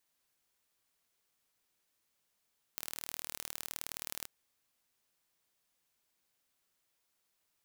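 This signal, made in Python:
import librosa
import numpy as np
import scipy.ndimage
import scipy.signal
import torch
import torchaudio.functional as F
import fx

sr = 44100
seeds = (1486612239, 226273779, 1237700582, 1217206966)

y = fx.impulse_train(sr, length_s=1.48, per_s=38.7, accent_every=2, level_db=-11.0)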